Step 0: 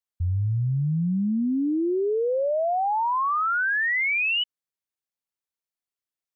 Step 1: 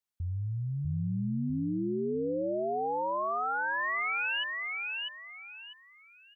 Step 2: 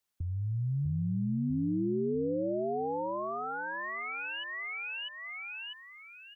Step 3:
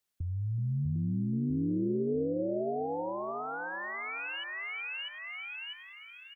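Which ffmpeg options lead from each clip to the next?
-filter_complex "[0:a]alimiter=level_in=2:limit=0.0631:level=0:latency=1,volume=0.501,asplit=2[s0][s1];[s1]aecho=0:1:647|1294|1941|2588:0.708|0.198|0.0555|0.0155[s2];[s0][s2]amix=inputs=2:normalize=0"
-filter_complex "[0:a]acrossover=split=140|410[s0][s1][s2];[s0]acompressor=threshold=0.00562:ratio=4[s3];[s1]acompressor=threshold=0.01:ratio=4[s4];[s2]acompressor=threshold=0.00562:ratio=4[s5];[s3][s4][s5]amix=inputs=3:normalize=0,volume=2.11"
-filter_complex "[0:a]equalizer=f=1000:t=o:w=0.77:g=-3,asplit=7[s0][s1][s2][s3][s4][s5][s6];[s1]adelay=373,afreqshift=120,volume=0.188[s7];[s2]adelay=746,afreqshift=240,volume=0.11[s8];[s3]adelay=1119,afreqshift=360,volume=0.0631[s9];[s4]adelay=1492,afreqshift=480,volume=0.0367[s10];[s5]adelay=1865,afreqshift=600,volume=0.0214[s11];[s6]adelay=2238,afreqshift=720,volume=0.0123[s12];[s0][s7][s8][s9][s10][s11][s12]amix=inputs=7:normalize=0"

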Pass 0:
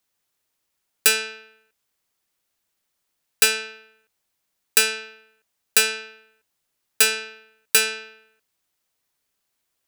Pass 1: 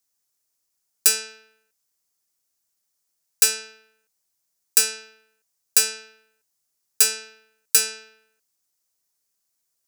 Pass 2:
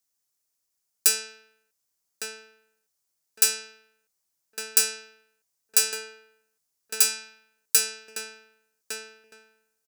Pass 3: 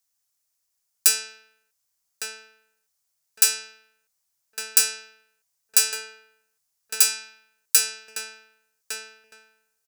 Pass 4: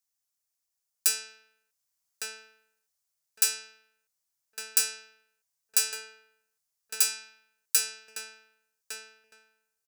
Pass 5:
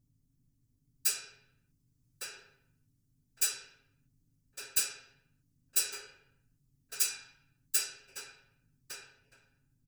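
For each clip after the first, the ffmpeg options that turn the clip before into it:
-af "highshelf=f=4300:t=q:w=1.5:g=8,volume=0.447"
-filter_complex "[0:a]asplit=2[s0][s1];[s1]adelay=1158,lowpass=f=1700:p=1,volume=0.708,asplit=2[s2][s3];[s3]adelay=1158,lowpass=f=1700:p=1,volume=0.26,asplit=2[s4][s5];[s5]adelay=1158,lowpass=f=1700:p=1,volume=0.26,asplit=2[s6][s7];[s7]adelay=1158,lowpass=f=1700:p=1,volume=0.26[s8];[s0][s2][s4][s6][s8]amix=inputs=5:normalize=0,volume=0.708"
-af "equalizer=f=300:t=o:w=1:g=-13.5,volume=1.33"
-af "dynaudnorm=f=130:g=17:m=3.98,volume=0.422"
-af "aeval=exprs='val(0)+0.000562*(sin(2*PI*50*n/s)+sin(2*PI*2*50*n/s)/2+sin(2*PI*3*50*n/s)/3+sin(2*PI*4*50*n/s)/4+sin(2*PI*5*50*n/s)/5)':c=same,afftfilt=real='hypot(re,im)*cos(2*PI*random(0))':imag='hypot(re,im)*sin(2*PI*random(1))':win_size=512:overlap=0.75,aecho=1:1:7.4:0.71,volume=0.891"

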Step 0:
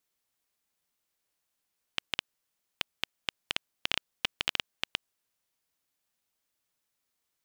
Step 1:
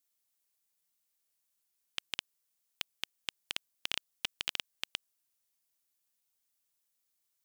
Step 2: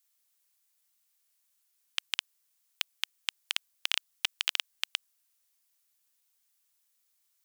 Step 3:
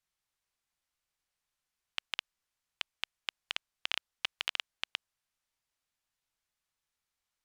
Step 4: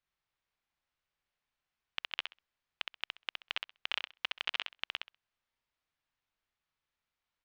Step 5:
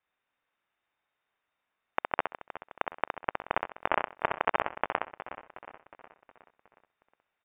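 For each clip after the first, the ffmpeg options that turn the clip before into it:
-af "highshelf=f=4300:g=12,volume=0.376"
-af "highpass=870,volume=2"
-af "aemphasis=mode=reproduction:type=riaa"
-af "lowpass=3600,aecho=1:1:65|130|195:0.596|0.0893|0.0134"
-filter_complex "[0:a]crystalizer=i=6:c=0,asplit=7[s0][s1][s2][s3][s4][s5][s6];[s1]adelay=364,afreqshift=36,volume=0.224[s7];[s2]adelay=728,afreqshift=72,volume=0.123[s8];[s3]adelay=1092,afreqshift=108,volume=0.0676[s9];[s4]adelay=1456,afreqshift=144,volume=0.0372[s10];[s5]adelay=1820,afreqshift=180,volume=0.0204[s11];[s6]adelay=2184,afreqshift=216,volume=0.0112[s12];[s0][s7][s8][s9][s10][s11][s12]amix=inputs=7:normalize=0,lowpass=f=3100:t=q:w=0.5098,lowpass=f=3100:t=q:w=0.6013,lowpass=f=3100:t=q:w=0.9,lowpass=f=3100:t=q:w=2.563,afreqshift=-3700,volume=1.19"

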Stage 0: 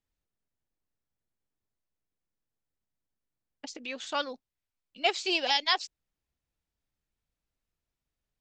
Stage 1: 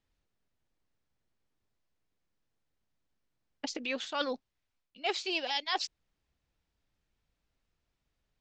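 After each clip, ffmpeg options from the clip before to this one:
-af "lowpass=5600,areverse,acompressor=threshold=0.0158:ratio=8,areverse,volume=2.11"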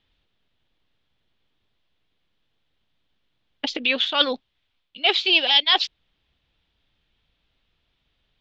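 -af "lowpass=f=3400:t=q:w=3.8,volume=2.66"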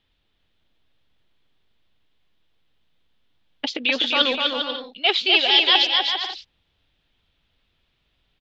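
-af "aecho=1:1:250|400|490|544|576.4:0.631|0.398|0.251|0.158|0.1"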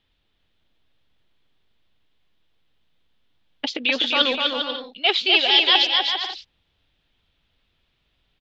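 -af anull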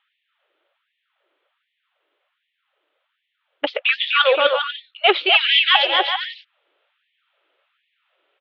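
-af "highpass=120,equalizer=f=370:t=q:w=4:g=4,equalizer=f=570:t=q:w=4:g=9,equalizer=f=1300:t=q:w=4:g=7,lowpass=f=2900:w=0.5412,lowpass=f=2900:w=1.3066,afftfilt=real='re*gte(b*sr/1024,280*pow(1800/280,0.5+0.5*sin(2*PI*1.3*pts/sr)))':imag='im*gte(b*sr/1024,280*pow(1800/280,0.5+0.5*sin(2*PI*1.3*pts/sr)))':win_size=1024:overlap=0.75,volume=1.78"

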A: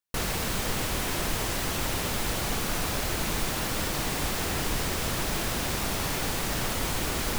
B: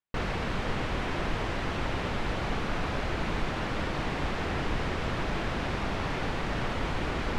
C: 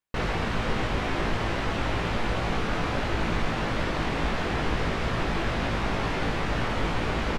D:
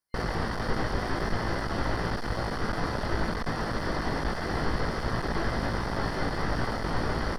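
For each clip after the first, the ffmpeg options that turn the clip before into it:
-af "lowpass=2600"
-filter_complex "[0:a]asplit=2[s0][s1];[s1]adelay=18,volume=0.596[s2];[s0][s2]amix=inputs=2:normalize=0,volume=1.33"
-filter_complex "[0:a]acrossover=split=4500[s0][s1];[s1]acompressor=threshold=0.002:ratio=4:attack=1:release=60[s2];[s0][s2]amix=inputs=2:normalize=0,aeval=exprs='clip(val(0),-1,0.0299)':c=same,superequalizer=12b=0.282:13b=0.562:14b=2:15b=0.631:16b=2"

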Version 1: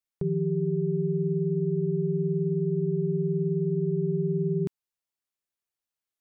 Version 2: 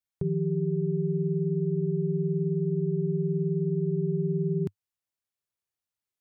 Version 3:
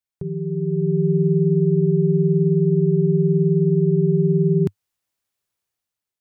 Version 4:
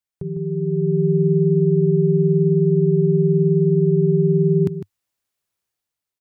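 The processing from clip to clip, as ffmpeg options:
-af "equalizer=f=100:t=o:w=0.69:g=9,volume=0.794"
-af "dynaudnorm=f=220:g=7:m=3.16"
-af "aecho=1:1:153:0.299"

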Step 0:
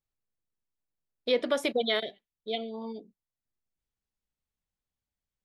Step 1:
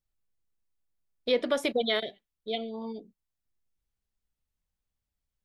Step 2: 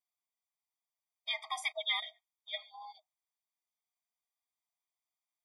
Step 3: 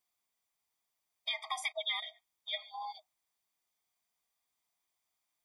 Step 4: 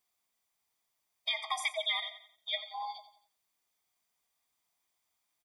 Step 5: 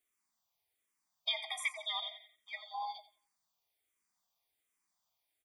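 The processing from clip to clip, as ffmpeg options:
-af "lowshelf=f=88:g=9.5"
-af "afreqshift=-86,afftfilt=real='re*eq(mod(floor(b*sr/1024/630),2),1)':imag='im*eq(mod(floor(b*sr/1024/630),2),1)':win_size=1024:overlap=0.75"
-af "acompressor=threshold=0.00562:ratio=2.5,volume=2.51"
-af "aecho=1:1:89|178|267|356:0.224|0.0873|0.0341|0.0133,volume=1.41"
-filter_complex "[0:a]asplit=2[s0][s1];[s1]afreqshift=-1.3[s2];[s0][s2]amix=inputs=2:normalize=1"

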